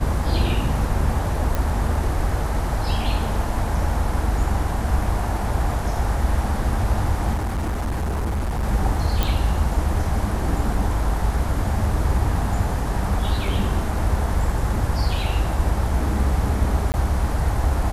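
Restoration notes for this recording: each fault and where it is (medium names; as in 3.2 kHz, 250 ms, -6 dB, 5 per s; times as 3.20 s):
1.55 s: pop
7.34–8.64 s: clipped -20.5 dBFS
9.23 s: pop
16.92–16.94 s: dropout 19 ms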